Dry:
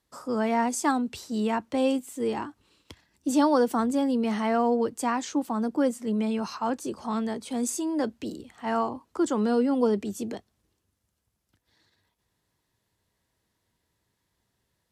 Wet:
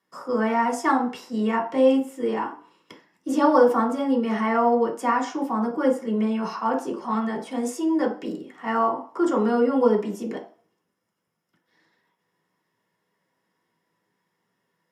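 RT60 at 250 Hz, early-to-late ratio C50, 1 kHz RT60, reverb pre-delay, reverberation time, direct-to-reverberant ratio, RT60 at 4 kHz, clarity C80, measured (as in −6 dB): 0.40 s, 9.5 dB, 0.50 s, 3 ms, 0.45 s, −3.5 dB, 0.45 s, 14.0 dB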